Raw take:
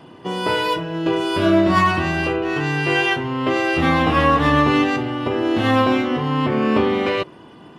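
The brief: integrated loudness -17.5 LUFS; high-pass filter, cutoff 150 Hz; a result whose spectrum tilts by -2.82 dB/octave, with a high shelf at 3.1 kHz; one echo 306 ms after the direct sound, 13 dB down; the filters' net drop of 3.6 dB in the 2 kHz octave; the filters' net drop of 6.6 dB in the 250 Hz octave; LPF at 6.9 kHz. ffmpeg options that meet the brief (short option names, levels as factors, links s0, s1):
-af "highpass=150,lowpass=6900,equalizer=f=250:t=o:g=-8.5,equalizer=f=2000:t=o:g=-7.5,highshelf=f=3100:g=7,aecho=1:1:306:0.224,volume=1.58"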